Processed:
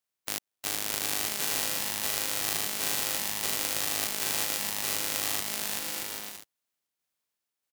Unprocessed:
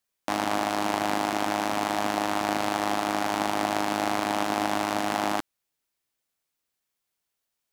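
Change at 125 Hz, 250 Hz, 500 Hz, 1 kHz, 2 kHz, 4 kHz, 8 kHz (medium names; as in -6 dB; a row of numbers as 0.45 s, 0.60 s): -7.0 dB, -15.0 dB, -11.5 dB, -14.0 dB, -4.0 dB, +3.0 dB, +9.0 dB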